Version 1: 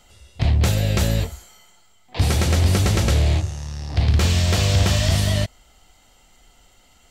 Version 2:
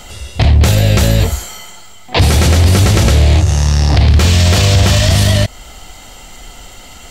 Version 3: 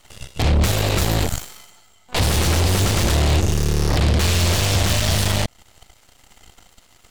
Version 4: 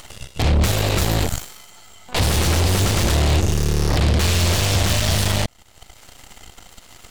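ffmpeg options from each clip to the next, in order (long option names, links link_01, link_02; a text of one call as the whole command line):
ffmpeg -i in.wav -filter_complex "[0:a]asplit=2[link_01][link_02];[link_02]acompressor=threshold=-26dB:ratio=6,volume=1dB[link_03];[link_01][link_03]amix=inputs=2:normalize=0,alimiter=level_in=14.5dB:limit=-1dB:release=50:level=0:latency=1,volume=-1dB" out.wav
ffmpeg -i in.wav -af "aeval=exprs='0.841*(cos(1*acos(clip(val(0)/0.841,-1,1)))-cos(1*PI/2))+0.237*(cos(4*acos(clip(val(0)/0.841,-1,1)))-cos(4*PI/2))+0.376*(cos(6*acos(clip(val(0)/0.841,-1,1)))-cos(6*PI/2))+0.119*(cos(7*acos(clip(val(0)/0.841,-1,1)))-cos(7*PI/2))+0.0668*(cos(8*acos(clip(val(0)/0.841,-1,1)))-cos(8*PI/2))':channel_layout=same,alimiter=limit=-10.5dB:level=0:latency=1:release=21" out.wav
ffmpeg -i in.wav -af "acompressor=mode=upward:threshold=-31dB:ratio=2.5" out.wav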